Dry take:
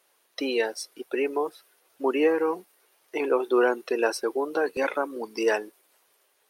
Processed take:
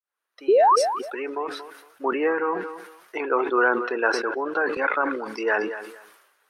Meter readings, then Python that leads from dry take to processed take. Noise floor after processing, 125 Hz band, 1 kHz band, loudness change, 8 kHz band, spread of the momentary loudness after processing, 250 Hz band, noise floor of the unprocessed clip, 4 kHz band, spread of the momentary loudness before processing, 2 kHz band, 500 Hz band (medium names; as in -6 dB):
-83 dBFS, no reading, +9.0 dB, +3.5 dB, +1.5 dB, 16 LU, -0.5 dB, -68 dBFS, 0.0 dB, 11 LU, +7.0 dB, +1.5 dB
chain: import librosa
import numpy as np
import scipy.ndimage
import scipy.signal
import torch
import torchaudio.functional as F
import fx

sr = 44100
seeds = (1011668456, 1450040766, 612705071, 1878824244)

y = fx.fade_in_head(x, sr, length_s=1.85)
y = fx.env_lowpass_down(y, sr, base_hz=2300.0, full_db=-23.0)
y = fx.peak_eq(y, sr, hz=1400.0, db=12.5, octaves=1.2)
y = fx.spec_paint(y, sr, seeds[0], shape='rise', start_s=0.48, length_s=0.28, low_hz=350.0, high_hz=1300.0, level_db=-12.0)
y = fx.echo_feedback(y, sr, ms=231, feedback_pct=20, wet_db=-20.0)
y = fx.sustainer(y, sr, db_per_s=56.0)
y = F.gain(torch.from_numpy(y), -3.5).numpy()